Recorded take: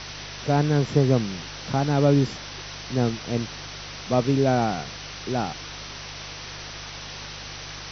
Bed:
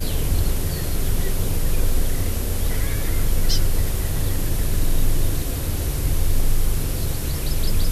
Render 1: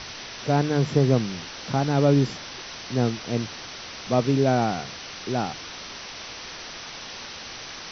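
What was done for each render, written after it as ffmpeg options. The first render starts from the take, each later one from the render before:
ffmpeg -i in.wav -af "bandreject=frequency=50:width_type=h:width=4,bandreject=frequency=100:width_type=h:width=4,bandreject=frequency=150:width_type=h:width=4" out.wav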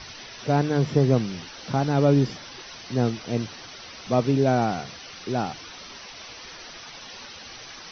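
ffmpeg -i in.wav -af "afftdn=noise_reduction=9:noise_floor=-39" out.wav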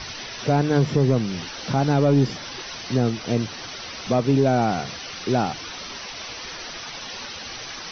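ffmpeg -i in.wav -af "acontrast=65,alimiter=limit=-9.5dB:level=0:latency=1:release=291" out.wav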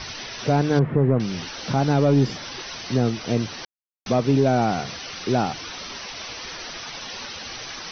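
ffmpeg -i in.wav -filter_complex "[0:a]asettb=1/sr,asplit=3[link_01][link_02][link_03];[link_01]atrim=end=0.794[link_04];[link_02]atrim=start=0.79:end=1.2,asetpts=PTS-STARTPTS,afade=type=in:duration=0.004:curve=qsin,afade=type=out:start_time=0.406:duration=0.004:curve=qsin,lowpass=frequency=1900:width=0.5412,lowpass=frequency=1900:width=1.3066[link_05];[link_03]atrim=start=1.196[link_06];[link_04][link_05]acrossfade=duration=0.004:curve1=hsin:curve2=qsin[link_07];[link_07][link_06]acrossfade=duration=0.004:curve1=qsin:curve2=hsin,asplit=3[link_08][link_09][link_10];[link_08]atrim=end=3.65,asetpts=PTS-STARTPTS,afade=type=out:start_time=3.646:duration=0.004:curve=hsin[link_11];[link_09]atrim=start=3.65:end=4.06,asetpts=PTS-STARTPTS,volume=0[link_12];[link_10]atrim=start=4.06,asetpts=PTS-STARTPTS,afade=type=in:duration=0.004:curve=hsin[link_13];[link_11][link_12][link_13]concat=n=3:v=0:a=1" out.wav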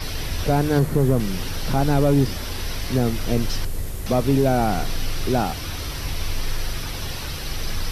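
ffmpeg -i in.wav -i bed.wav -filter_complex "[1:a]volume=-7dB[link_01];[0:a][link_01]amix=inputs=2:normalize=0" out.wav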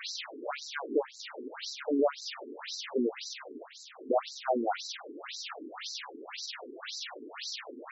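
ffmpeg -i in.wav -af "aeval=exprs='(tanh(5.01*val(0)+0.3)-tanh(0.3))/5.01':channel_layout=same,afftfilt=real='re*between(b*sr/1024,310*pow(5500/310,0.5+0.5*sin(2*PI*1.9*pts/sr))/1.41,310*pow(5500/310,0.5+0.5*sin(2*PI*1.9*pts/sr))*1.41)':imag='im*between(b*sr/1024,310*pow(5500/310,0.5+0.5*sin(2*PI*1.9*pts/sr))/1.41,310*pow(5500/310,0.5+0.5*sin(2*PI*1.9*pts/sr))*1.41)':win_size=1024:overlap=0.75" out.wav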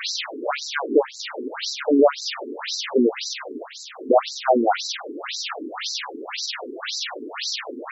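ffmpeg -i in.wav -af "volume=11.5dB" out.wav

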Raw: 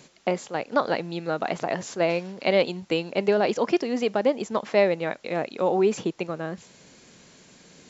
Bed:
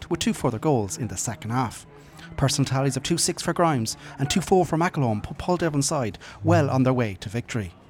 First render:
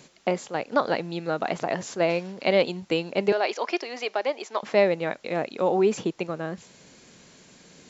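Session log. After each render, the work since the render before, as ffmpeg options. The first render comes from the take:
ffmpeg -i in.wav -filter_complex "[0:a]asettb=1/sr,asplit=3[link_01][link_02][link_03];[link_01]atrim=end=3.324[link_04];[link_02]atrim=start=3.32:end=4.63,asetpts=PTS-STARTPTS,afade=type=in:duration=0.004:curve=qsin,afade=type=out:start_time=1.306:duration=0.004:curve=qsin,highpass=frequency=400:width=0.5412,highpass=frequency=400:width=1.3066,equalizer=frequency=490:width_type=q:width=4:gain=-8,equalizer=frequency=2300:width_type=q:width=4:gain=4,equalizer=frequency=4300:width_type=q:width=4:gain=3,lowpass=frequency=6900:width=0.5412,lowpass=frequency=6900:width=1.3066[link_05];[link_03]atrim=start=4.626[link_06];[link_04][link_05]acrossfade=duration=0.004:curve1=hsin:curve2=qsin[link_07];[link_07][link_06]acrossfade=duration=0.004:curve1=qsin:curve2=hsin" out.wav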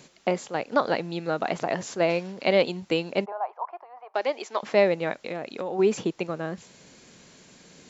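ffmpeg -i in.wav -filter_complex "[0:a]asplit=3[link_01][link_02][link_03];[link_01]afade=type=out:start_time=3.24:duration=0.02[link_04];[link_02]asuperpass=centerf=900:order=4:qfactor=2.1,afade=type=in:start_time=3.24:duration=0.02,afade=type=out:start_time=4.14:duration=0.02[link_05];[link_03]afade=type=in:start_time=4.14:duration=0.02[link_06];[link_04][link_05][link_06]amix=inputs=3:normalize=0,asplit=3[link_07][link_08][link_09];[link_07]afade=type=out:start_time=5.19:duration=0.02[link_10];[link_08]acompressor=threshold=-27dB:ratio=6:attack=3.2:release=140:knee=1:detection=peak,afade=type=in:start_time=5.19:duration=0.02,afade=type=out:start_time=5.78:duration=0.02[link_11];[link_09]afade=type=in:start_time=5.78:duration=0.02[link_12];[link_10][link_11][link_12]amix=inputs=3:normalize=0" out.wav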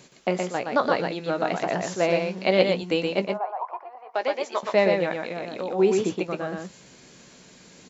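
ffmpeg -i in.wav -filter_complex "[0:a]asplit=2[link_01][link_02];[link_02]adelay=16,volume=-10dB[link_03];[link_01][link_03]amix=inputs=2:normalize=0,aecho=1:1:120:0.631" out.wav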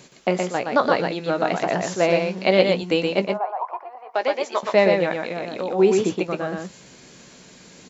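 ffmpeg -i in.wav -af "volume=3.5dB,alimiter=limit=-3dB:level=0:latency=1" out.wav

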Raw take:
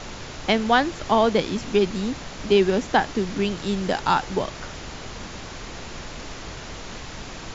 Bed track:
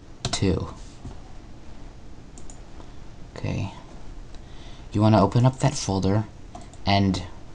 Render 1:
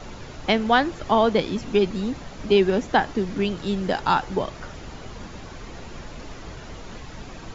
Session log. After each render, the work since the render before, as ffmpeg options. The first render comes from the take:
ffmpeg -i in.wav -af "afftdn=noise_reduction=8:noise_floor=-37" out.wav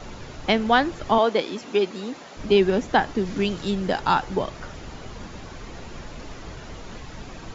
ffmpeg -i in.wav -filter_complex "[0:a]asettb=1/sr,asplit=3[link_01][link_02][link_03];[link_01]atrim=end=1.184[link_04];[link_02]atrim=start=1.18:end=2.37,asetpts=PTS-STARTPTS,afade=type=in:duration=0.004:curve=qsin,afade=type=out:start_time=1.186:duration=0.004:curve=qsin,highpass=310[link_05];[link_03]atrim=start=2.366[link_06];[link_04][link_05]acrossfade=duration=0.004:curve1=hsin:curve2=qsin[link_07];[link_07][link_06]acrossfade=duration=0.004:curve1=qsin:curve2=hsin,asettb=1/sr,asplit=3[link_08][link_09][link_10];[link_08]atrim=end=3.254[link_11];[link_09]atrim=start=3.25:end=3.71,asetpts=PTS-STARTPTS,afade=type=in:duration=0.004:curve=qsin,afade=type=out:start_time=0.456:duration=0.004:curve=qsin,highshelf=frequency=3900:gain=5.5[link_12];[link_10]atrim=start=3.706[link_13];[link_11][link_12]acrossfade=duration=0.004:curve1=hsin:curve2=qsin[link_14];[link_14][link_13]acrossfade=duration=0.004:curve1=qsin:curve2=hsin" out.wav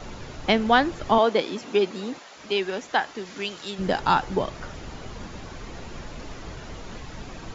ffmpeg -i in.wav -filter_complex "[0:a]asplit=3[link_01][link_02][link_03];[link_01]afade=type=out:start_time=2.18:duration=0.02[link_04];[link_02]highpass=frequency=1000:poles=1,afade=type=in:start_time=2.18:duration=0.02,afade=type=out:start_time=3.78:duration=0.02[link_05];[link_03]afade=type=in:start_time=3.78:duration=0.02[link_06];[link_04][link_05][link_06]amix=inputs=3:normalize=0" out.wav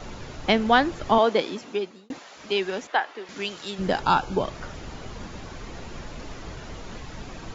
ffmpeg -i in.wav -filter_complex "[0:a]asettb=1/sr,asplit=3[link_01][link_02][link_03];[link_01]atrim=end=2.874[link_04];[link_02]atrim=start=2.87:end=3.29,asetpts=PTS-STARTPTS,afade=type=in:duration=0.004:curve=qsin,afade=type=out:start_time=0.416:duration=0.004:curve=qsin,acrossover=split=310 3800:gain=0.0794 1 0.224[link_05][link_06][link_07];[link_05][link_06][link_07]amix=inputs=3:normalize=0[link_08];[link_03]atrim=start=3.286[link_09];[link_04][link_08]acrossfade=duration=0.004:curve1=hsin:curve2=qsin[link_10];[link_10][link_09]acrossfade=duration=0.004:curve1=qsin:curve2=hsin,asettb=1/sr,asplit=3[link_11][link_12][link_13];[link_11]atrim=end=4.034[link_14];[link_12]atrim=start=4.03:end=4.44,asetpts=PTS-STARTPTS,afade=type=in:duration=0.004:curve=qsin,afade=type=out:start_time=0.406:duration=0.004:curve=qsin,asuperstop=centerf=1900:order=12:qfactor=4.6[link_15];[link_13]atrim=start=4.436[link_16];[link_14][link_15]acrossfade=duration=0.004:curve1=hsin:curve2=qsin[link_17];[link_17][link_16]acrossfade=duration=0.004:curve1=qsin:curve2=hsin,asplit=2[link_18][link_19];[link_18]atrim=end=2.1,asetpts=PTS-STARTPTS,afade=type=out:start_time=1.44:duration=0.66[link_20];[link_19]atrim=start=2.1,asetpts=PTS-STARTPTS,afade=type=in:duration=0.004:curve=hsin[link_21];[link_20][link_21]concat=n=2:v=0:a=1" out.wav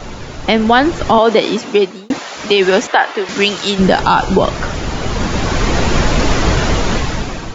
ffmpeg -i in.wav -af "dynaudnorm=framelen=330:gausssize=5:maxgain=15dB,alimiter=level_in=10dB:limit=-1dB:release=50:level=0:latency=1" out.wav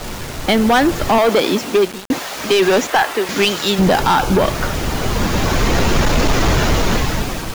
ffmpeg -i in.wav -af "acrusher=bits=4:mix=0:aa=0.000001,asoftclip=type=hard:threshold=-9dB" out.wav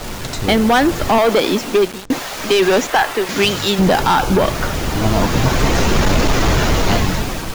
ffmpeg -i in.wav -i bed.wav -filter_complex "[1:a]volume=-1.5dB[link_01];[0:a][link_01]amix=inputs=2:normalize=0" out.wav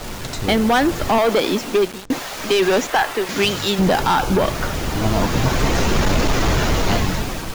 ffmpeg -i in.wav -af "volume=-3dB" out.wav

